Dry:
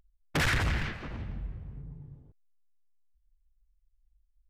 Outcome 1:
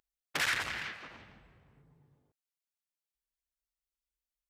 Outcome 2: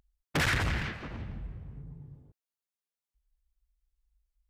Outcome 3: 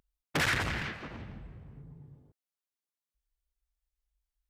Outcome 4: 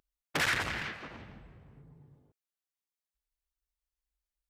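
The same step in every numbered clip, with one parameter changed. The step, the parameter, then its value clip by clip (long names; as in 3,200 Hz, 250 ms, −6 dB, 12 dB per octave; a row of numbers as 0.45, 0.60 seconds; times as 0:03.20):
high-pass filter, corner frequency: 1,300, 51, 180, 450 Hertz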